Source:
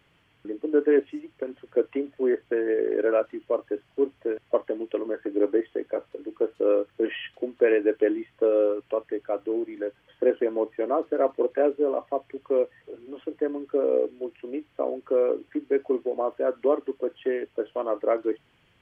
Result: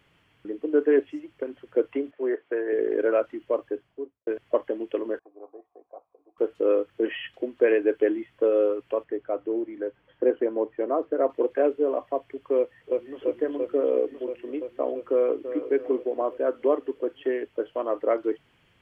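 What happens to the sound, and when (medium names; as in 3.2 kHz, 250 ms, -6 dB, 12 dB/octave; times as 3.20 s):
2.11–2.73 s: band-pass 380–2600 Hz
3.57–4.27 s: studio fade out
5.19–6.38 s: cascade formant filter a
9.04–11.30 s: low-pass 1.6 kHz 6 dB/octave
12.57–13.22 s: echo throw 340 ms, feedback 80%, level -1.5 dB
15.11–15.56 s: echo throw 330 ms, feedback 45%, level -11 dB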